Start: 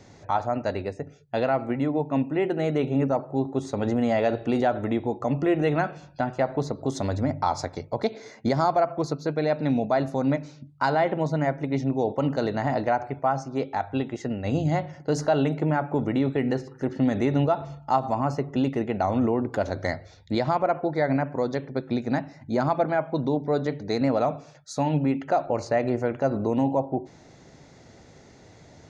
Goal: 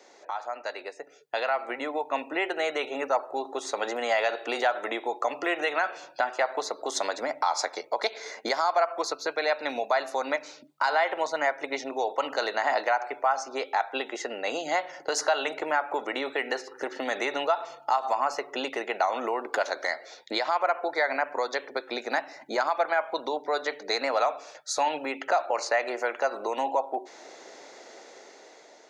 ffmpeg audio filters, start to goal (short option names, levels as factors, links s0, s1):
-filter_complex "[0:a]highpass=f=390:w=0.5412,highpass=f=390:w=1.3066,acrossover=split=850[s0][s1];[s0]acompressor=threshold=0.00891:ratio=6[s2];[s2][s1]amix=inputs=2:normalize=0,alimiter=limit=0.0794:level=0:latency=1:release=130,dynaudnorm=f=550:g=5:m=2.51"